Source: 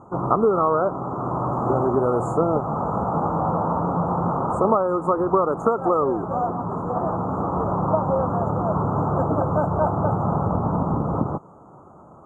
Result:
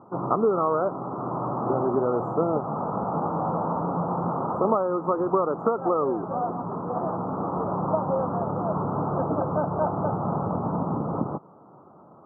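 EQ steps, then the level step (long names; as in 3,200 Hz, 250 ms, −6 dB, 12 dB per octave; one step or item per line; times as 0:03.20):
high-pass filter 150 Hz 12 dB per octave
high-frequency loss of the air 470 metres
−2.0 dB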